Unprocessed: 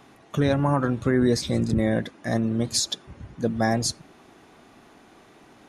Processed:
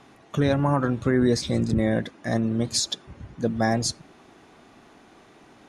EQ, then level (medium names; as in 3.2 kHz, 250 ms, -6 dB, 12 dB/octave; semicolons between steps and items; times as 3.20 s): low-pass 10 kHz 12 dB/octave; 0.0 dB